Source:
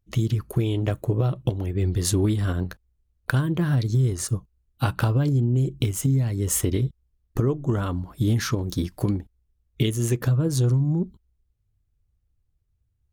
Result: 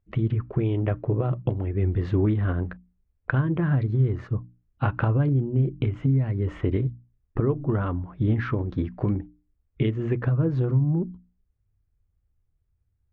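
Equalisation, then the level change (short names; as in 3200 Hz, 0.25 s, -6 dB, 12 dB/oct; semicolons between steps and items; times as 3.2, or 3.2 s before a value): LPF 2300 Hz 24 dB/oct; notches 60/120/180/240/300 Hz; 0.0 dB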